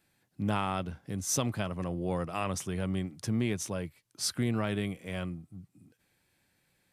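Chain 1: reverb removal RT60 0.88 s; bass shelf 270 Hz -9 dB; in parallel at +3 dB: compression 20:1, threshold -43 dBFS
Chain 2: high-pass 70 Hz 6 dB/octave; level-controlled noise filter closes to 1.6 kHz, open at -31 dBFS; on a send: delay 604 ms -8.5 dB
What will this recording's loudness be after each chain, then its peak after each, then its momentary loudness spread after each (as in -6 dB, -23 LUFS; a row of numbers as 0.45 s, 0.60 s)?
-34.5 LUFS, -33.5 LUFS; -16.0 dBFS, -17.0 dBFS; 10 LU, 9 LU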